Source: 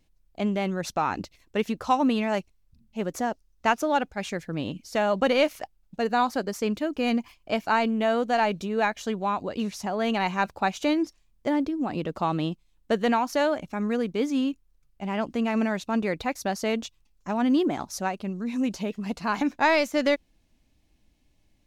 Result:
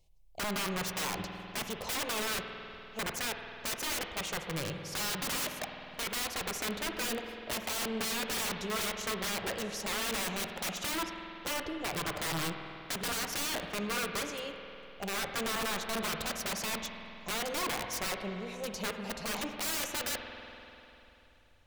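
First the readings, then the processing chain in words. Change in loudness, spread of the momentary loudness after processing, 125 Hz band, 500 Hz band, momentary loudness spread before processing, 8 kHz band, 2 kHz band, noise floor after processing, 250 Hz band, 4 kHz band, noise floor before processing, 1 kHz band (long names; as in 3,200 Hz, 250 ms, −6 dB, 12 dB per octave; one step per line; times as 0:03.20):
−8.0 dB, 7 LU, −7.5 dB, −12.5 dB, 9 LU, +7.0 dB, −5.0 dB, −56 dBFS, −14.5 dB, +1.5 dB, −66 dBFS, −11.5 dB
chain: phaser with its sweep stopped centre 630 Hz, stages 4
wrap-around overflow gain 29.5 dB
spring reverb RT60 3.2 s, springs 49 ms, chirp 75 ms, DRR 4.5 dB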